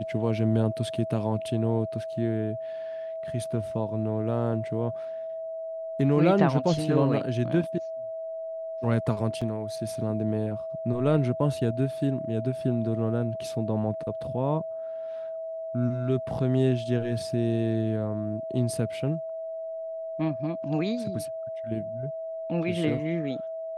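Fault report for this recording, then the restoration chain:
whistle 650 Hz −32 dBFS
0:09.41–0:09.42: drop-out 5.1 ms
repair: notch filter 650 Hz, Q 30
repair the gap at 0:09.41, 5.1 ms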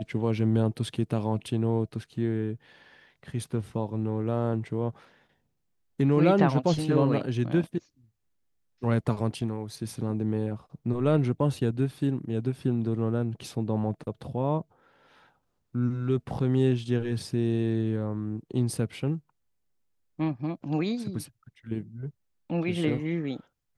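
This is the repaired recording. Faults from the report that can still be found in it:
none of them is left

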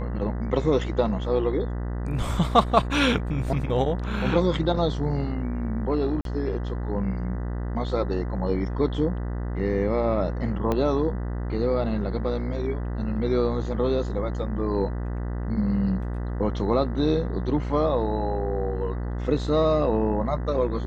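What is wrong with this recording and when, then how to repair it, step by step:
mains buzz 60 Hz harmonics 33 −29 dBFS
0:06.21–0:06.25: drop-out 42 ms
0:10.72: click −13 dBFS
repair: click removal
hum removal 60 Hz, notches 33
repair the gap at 0:06.21, 42 ms

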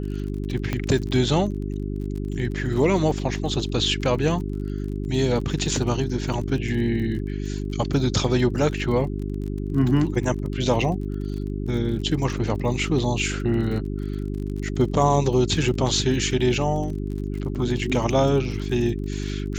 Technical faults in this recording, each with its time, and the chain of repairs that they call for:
surface crackle 38 per second −32 dBFS
mains hum 50 Hz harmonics 8 −28 dBFS
0:00.73: click −12 dBFS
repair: click removal
hum removal 50 Hz, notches 8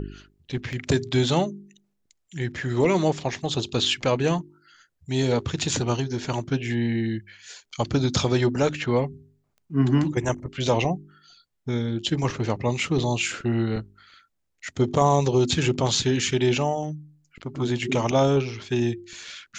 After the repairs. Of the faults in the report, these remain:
0:00.73: click

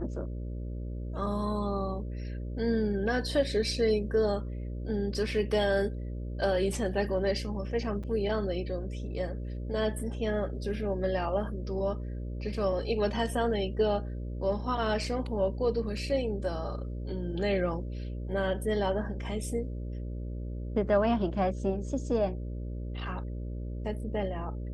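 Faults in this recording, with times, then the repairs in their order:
mains buzz 60 Hz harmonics 10 −36 dBFS
0:08.03–0:08.04: drop-out 6.1 ms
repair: hum removal 60 Hz, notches 10
repair the gap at 0:08.03, 6.1 ms

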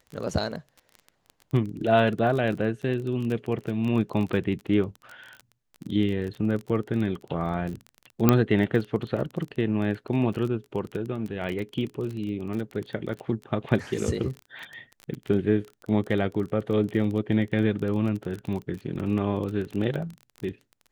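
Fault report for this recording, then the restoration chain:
surface crackle 23 per second −31 dBFS
0:08.29: click −4 dBFS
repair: click removal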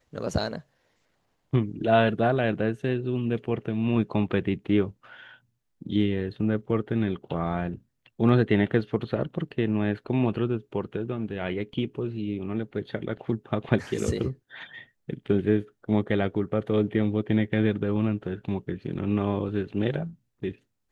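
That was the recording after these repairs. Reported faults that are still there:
0:08.29: click

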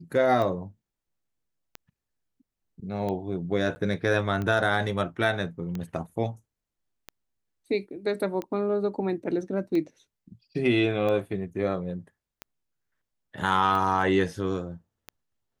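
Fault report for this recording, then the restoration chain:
scratch tick 45 rpm −20 dBFS
0:03.75–0:03.76: drop-out 10 ms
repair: click removal
repair the gap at 0:03.75, 10 ms

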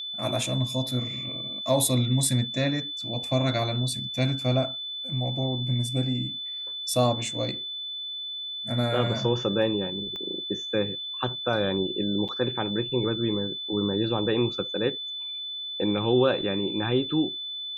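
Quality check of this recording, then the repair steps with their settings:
whistle 3,500 Hz −32 dBFS
0:10.16: click −24 dBFS
0:12.28–0:12.29: drop-out 7.3 ms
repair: click removal
notch filter 3,500 Hz, Q 30
repair the gap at 0:12.28, 7.3 ms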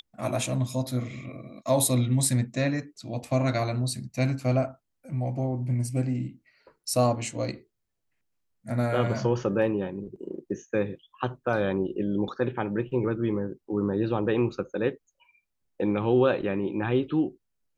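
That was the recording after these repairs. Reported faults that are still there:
0:10.16: click

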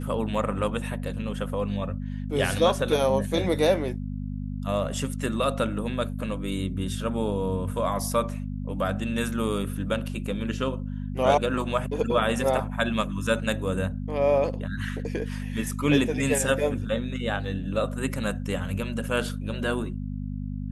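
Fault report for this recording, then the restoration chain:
mains hum 50 Hz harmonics 5 −32 dBFS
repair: hum removal 50 Hz, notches 5

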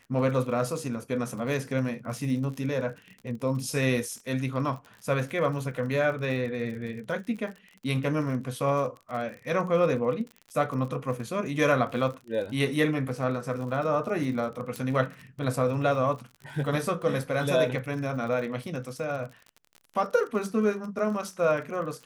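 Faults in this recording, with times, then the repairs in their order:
surface crackle 45 per second −36 dBFS
0:14.76: click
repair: click removal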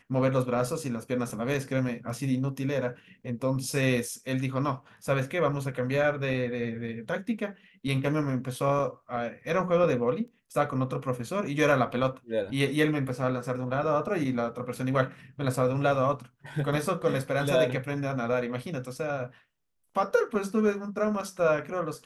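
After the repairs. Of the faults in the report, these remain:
none of them is left

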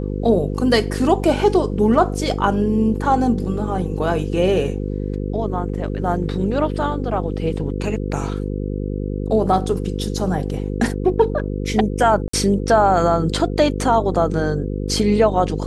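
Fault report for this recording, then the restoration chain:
mains buzz 50 Hz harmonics 10 −24 dBFS
0:12.28–0:12.33: drop-out 54 ms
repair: hum removal 50 Hz, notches 10
repair the gap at 0:12.28, 54 ms

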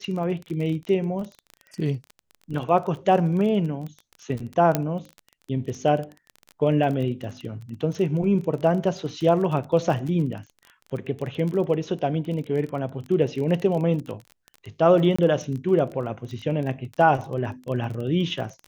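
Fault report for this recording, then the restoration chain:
surface crackle 23 per second −30 dBFS
0:04.75: click −7 dBFS
0:15.16–0:15.19: drop-out 25 ms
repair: click removal
repair the gap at 0:15.16, 25 ms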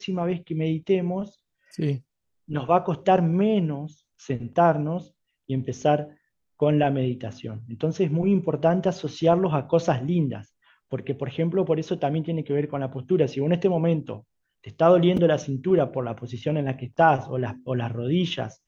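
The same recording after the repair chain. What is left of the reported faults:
none of them is left

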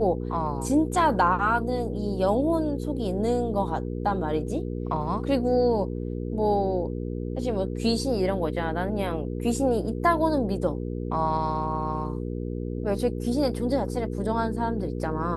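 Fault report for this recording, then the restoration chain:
mains hum 60 Hz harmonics 8 −31 dBFS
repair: hum removal 60 Hz, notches 8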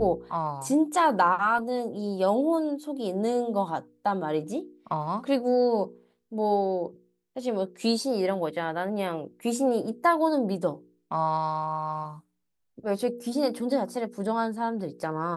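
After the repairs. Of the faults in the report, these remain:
none of them is left

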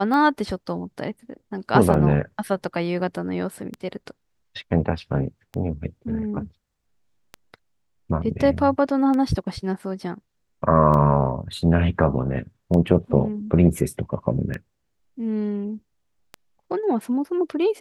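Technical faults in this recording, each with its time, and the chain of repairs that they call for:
scratch tick 33 1/3 rpm −17 dBFS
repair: click removal

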